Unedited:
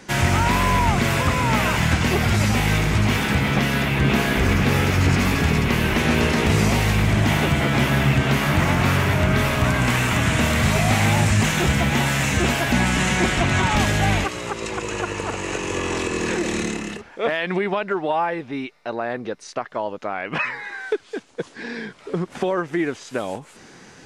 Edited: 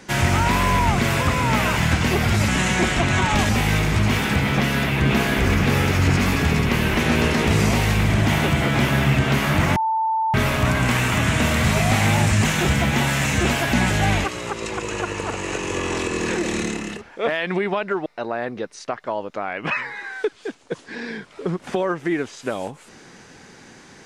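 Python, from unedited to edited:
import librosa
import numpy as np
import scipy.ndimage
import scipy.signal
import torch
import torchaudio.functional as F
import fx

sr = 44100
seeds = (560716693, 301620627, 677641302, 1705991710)

y = fx.edit(x, sr, fx.bleep(start_s=8.75, length_s=0.58, hz=888.0, db=-18.0),
    fx.move(start_s=12.89, length_s=1.01, to_s=2.48),
    fx.cut(start_s=18.06, length_s=0.68), tone=tone)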